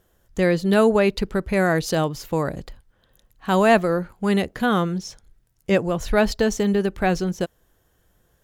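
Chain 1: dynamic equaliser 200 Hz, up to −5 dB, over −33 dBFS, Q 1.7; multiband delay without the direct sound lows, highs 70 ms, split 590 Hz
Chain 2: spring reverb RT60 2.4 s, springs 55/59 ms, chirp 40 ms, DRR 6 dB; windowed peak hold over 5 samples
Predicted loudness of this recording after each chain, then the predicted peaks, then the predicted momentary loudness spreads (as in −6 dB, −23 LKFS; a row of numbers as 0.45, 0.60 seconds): −24.0, −20.5 LKFS; −6.0, −5.0 dBFS; 14, 18 LU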